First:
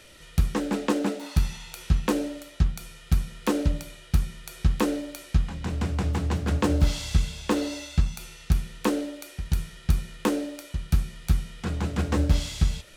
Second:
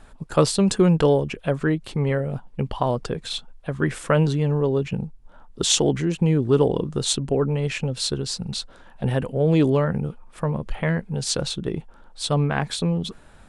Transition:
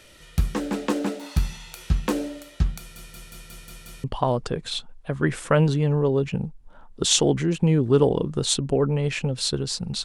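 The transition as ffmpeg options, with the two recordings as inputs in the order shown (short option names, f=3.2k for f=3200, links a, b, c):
-filter_complex "[0:a]apad=whole_dur=10.04,atrim=end=10.04,asplit=7[a][b][c][d][e][f][g];[a]atrim=end=2.962[h];[b]atrim=start=2.778:end=2.962[i];[c]atrim=start=2.778:end=2.962[j];[d]atrim=start=2.778:end=2.962[k];[e]atrim=start=2.778:end=2.962[l];[f]atrim=start=2.778:end=2.962[m];[g]atrim=start=2.778:end=2.962[n];[1:a]atrim=start=2.628:end=8.63[o];[h][i]acrossfade=d=0.004:c1=hsin:c2=hsin[p];[p][j]acrossfade=d=0.004:c1=hsin:c2=hsin[q];[q][k]acrossfade=d=0.004:c1=hsin:c2=hsin[r];[r][l]acrossfade=d=0.004:c1=hsin:c2=hsin[s];[s][m]acrossfade=d=0.004:c1=hsin:c2=hsin[t];[t][n]acrossfade=d=0.004:c1=hsin:c2=hsin[u];[u][o]acrossfade=d=0.004:c1=hsin:c2=hsin"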